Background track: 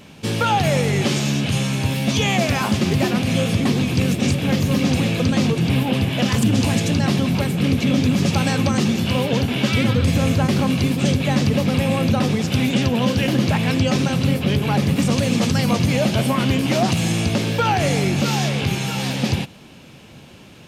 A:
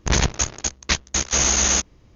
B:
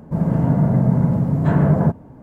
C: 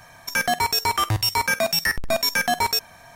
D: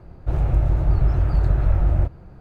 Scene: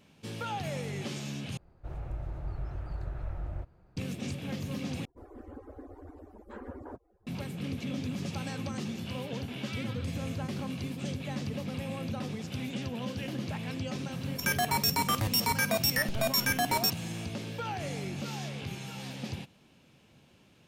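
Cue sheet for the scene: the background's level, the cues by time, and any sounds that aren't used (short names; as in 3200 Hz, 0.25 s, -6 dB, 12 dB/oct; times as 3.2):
background track -17.5 dB
1.57 replace with D -13.5 dB + low shelf 380 Hz -5.5 dB
5.05 replace with B -17 dB + median-filter separation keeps percussive
14.11 add C -8 dB + high shelf 11000 Hz +9 dB
not used: A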